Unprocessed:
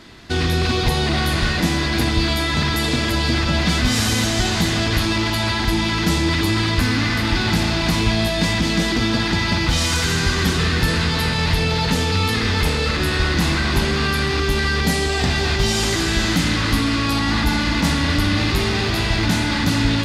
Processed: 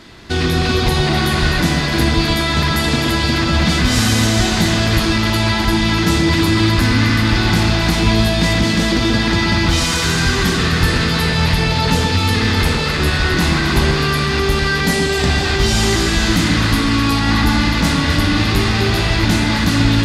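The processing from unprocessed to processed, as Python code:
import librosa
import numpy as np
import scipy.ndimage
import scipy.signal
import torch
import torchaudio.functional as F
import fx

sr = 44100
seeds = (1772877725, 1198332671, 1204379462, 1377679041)

y = fx.echo_alternate(x, sr, ms=128, hz=1800.0, feedback_pct=50, wet_db=-4)
y = y * librosa.db_to_amplitude(2.5)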